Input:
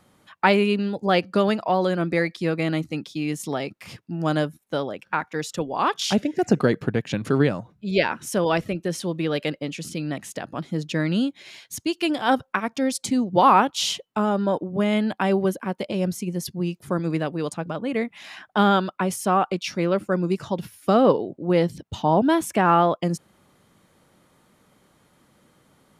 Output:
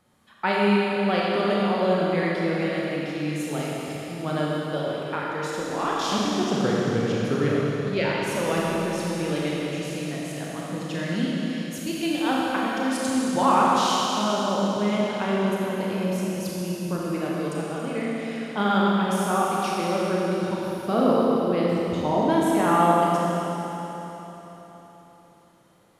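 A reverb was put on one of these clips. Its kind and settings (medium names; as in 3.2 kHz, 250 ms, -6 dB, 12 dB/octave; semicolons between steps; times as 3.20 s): Schroeder reverb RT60 3.9 s, combs from 27 ms, DRR -5.5 dB; trim -7.5 dB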